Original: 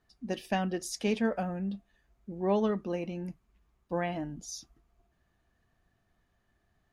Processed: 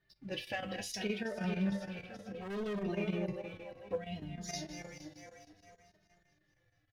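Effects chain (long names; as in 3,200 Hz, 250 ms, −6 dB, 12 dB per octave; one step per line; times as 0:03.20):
feedback delay that plays each chunk backwards 221 ms, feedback 67%, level −11 dB
octave-band graphic EQ 125/250/500/1,000/2,000/4,000/8,000 Hz +9/−5/+5/−6/+9/+6/−8 dB
single-tap delay 492 ms −21.5 dB
0:00.86–0:01.44: downward compressor 4 to 1, threshold −34 dBFS, peak gain reduction 10.5 dB
brickwall limiter −25 dBFS, peak gain reduction 9 dB
0:03.95–0:04.49: flat-topped bell 990 Hz −14 dB 2.9 octaves
tuned comb filter 100 Hz, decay 0.19 s, harmonics all, mix 80%
square-wave tremolo 6.4 Hz, depth 65%, duty 85%
leveller curve on the samples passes 1
0:02.41–0:02.83: hard clipping −39 dBFS, distortion −12 dB
barber-pole flanger 2.9 ms −0.64 Hz
level +4.5 dB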